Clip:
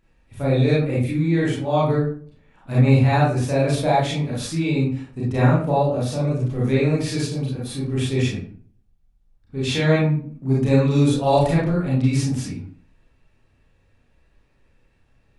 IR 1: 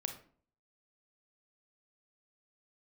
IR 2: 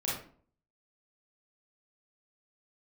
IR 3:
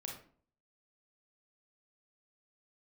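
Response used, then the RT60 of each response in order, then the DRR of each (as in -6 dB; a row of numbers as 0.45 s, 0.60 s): 2; 0.50 s, 0.50 s, 0.50 s; 5.0 dB, -7.0 dB, -0.5 dB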